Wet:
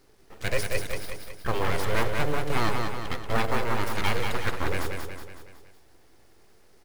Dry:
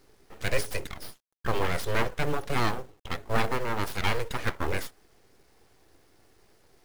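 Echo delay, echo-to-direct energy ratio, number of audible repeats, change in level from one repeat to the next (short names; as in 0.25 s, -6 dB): 0.185 s, -3.0 dB, 5, -5.5 dB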